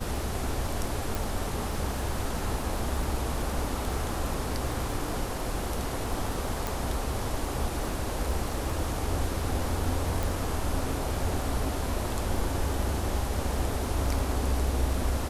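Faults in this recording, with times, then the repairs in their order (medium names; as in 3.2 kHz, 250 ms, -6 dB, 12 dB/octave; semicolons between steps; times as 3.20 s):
crackle 40 per s -36 dBFS
1.15 s: pop
6.67 s: pop
10.23 s: pop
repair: de-click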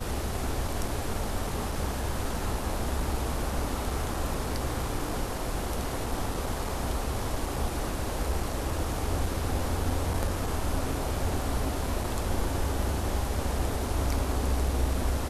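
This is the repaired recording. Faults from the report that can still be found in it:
10.23 s: pop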